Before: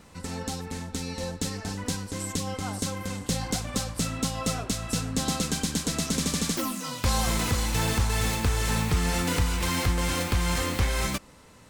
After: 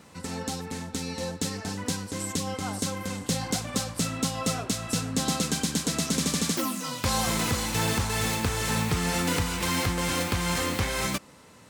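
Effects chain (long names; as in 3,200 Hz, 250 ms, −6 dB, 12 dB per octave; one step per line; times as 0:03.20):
high-pass filter 100 Hz 12 dB per octave
level +1 dB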